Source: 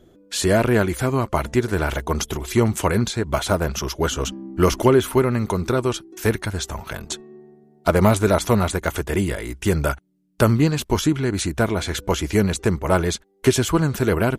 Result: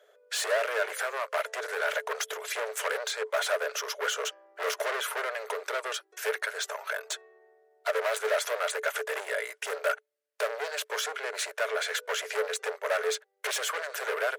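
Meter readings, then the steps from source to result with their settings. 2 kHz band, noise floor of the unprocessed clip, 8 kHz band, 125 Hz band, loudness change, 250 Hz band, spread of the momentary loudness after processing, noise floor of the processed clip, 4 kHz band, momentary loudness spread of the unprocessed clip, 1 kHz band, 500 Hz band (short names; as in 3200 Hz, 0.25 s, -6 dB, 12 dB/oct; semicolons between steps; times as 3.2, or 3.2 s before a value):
-2.0 dB, -55 dBFS, -6.5 dB, under -40 dB, -10.0 dB, under -35 dB, 6 LU, -69 dBFS, -4.5 dB, 9 LU, -8.0 dB, -10.0 dB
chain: overloaded stage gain 23 dB; rippled Chebyshev high-pass 420 Hz, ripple 9 dB; gain +4 dB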